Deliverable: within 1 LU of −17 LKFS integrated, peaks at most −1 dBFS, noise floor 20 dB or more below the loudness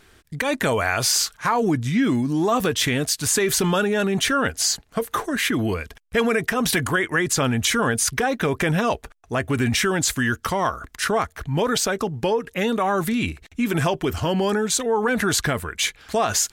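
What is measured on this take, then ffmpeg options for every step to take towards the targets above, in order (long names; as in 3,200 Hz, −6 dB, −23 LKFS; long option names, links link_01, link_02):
integrated loudness −22.0 LKFS; sample peak −8.5 dBFS; target loudness −17.0 LKFS
→ -af "volume=5dB"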